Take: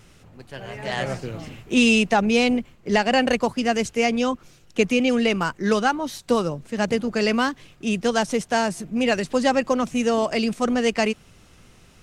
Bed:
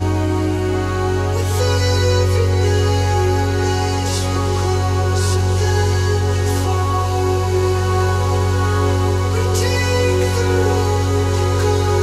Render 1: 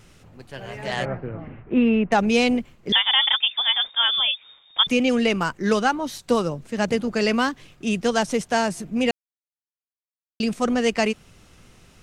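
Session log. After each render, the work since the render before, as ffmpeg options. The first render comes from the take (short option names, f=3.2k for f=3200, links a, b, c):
-filter_complex "[0:a]asettb=1/sr,asplit=3[a][b][c];[a]atrim=end=1.054[d];[b]atrim=start=1.05:end=2.12,asetpts=PTS-STARTPTS,afade=t=in:d=0.004:c=qsin,afade=t=out:st=1.066:d=0.004:c=qsin,lowpass=f=1.9k:w=0.5412,lowpass=f=1.9k:w=1.3066[e];[c]atrim=start=2.116[f];[d][e]acrossfade=d=0.004:c1=hsin:c2=qsin[g];[g][f]acrossfade=d=0.004:c1=qsin:c2=hsin,asettb=1/sr,asplit=3[h][i][j];[h]atrim=end=2.924[k];[i]atrim=start=2.92:end=4.87,asetpts=PTS-STARTPTS,afade=t=in:d=0.004:c=qsin,afade=t=out:st=1.946:d=0.004:c=qsin,lowpass=f=3.1k:t=q:w=0.5098,lowpass=f=3.1k:t=q:w=0.6013,lowpass=f=3.1k:t=q:w=0.9,lowpass=f=3.1k:t=q:w=2.563,afreqshift=-3700[l];[j]atrim=start=4.866[m];[k][l]acrossfade=d=0.004:c1=hsin:c2=qsin[n];[n][m]acrossfade=d=0.004:c1=qsin:c2=hsin,asplit=3[o][p][q];[o]atrim=end=9.11,asetpts=PTS-STARTPTS,afade=t=out:st=9.106:d=0.004:c=hsin[r];[p]atrim=start=9.11:end=10.4,asetpts=PTS-STARTPTS,volume=0[s];[q]atrim=start=10.4,asetpts=PTS-STARTPTS,afade=t=in:d=0.004:c=hsin[t];[r][s][t]concat=n=3:v=0:a=1"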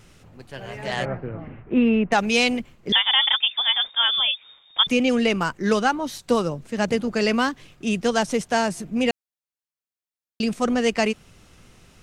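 -filter_complex "[0:a]asettb=1/sr,asplit=3[a][b][c];[a]atrim=end=2.134[d];[b]atrim=start=2.13:end=2.6,asetpts=PTS-STARTPTS,afade=t=in:d=0.004:c=qsin,afade=t=out:st=0.466:d=0.004:c=qsin,tiltshelf=f=970:g=-4.5[e];[c]atrim=start=2.596[f];[d][e]acrossfade=d=0.004:c1=hsin:c2=qsin[g];[g][f]acrossfade=d=0.004:c1=qsin:c2=hsin"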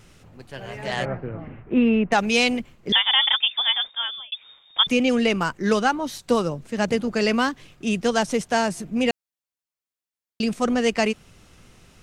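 -filter_complex "[0:a]asplit=2[a][b];[a]atrim=end=4.32,asetpts=PTS-STARTPTS,afade=t=out:st=3.66:d=0.66[c];[b]atrim=start=4.32,asetpts=PTS-STARTPTS,afade=t=in:d=0.004:c=hsin[d];[c][d]concat=n=2:v=0:a=1"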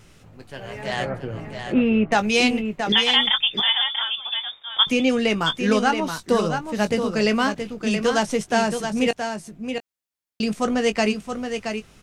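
-filter_complex "[0:a]asplit=2[a][b];[b]adelay=19,volume=-10.5dB[c];[a][c]amix=inputs=2:normalize=0,aecho=1:1:674:0.447"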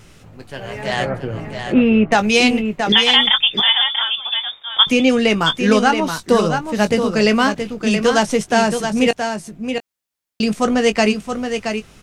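-af "volume=5.5dB,alimiter=limit=-1dB:level=0:latency=1"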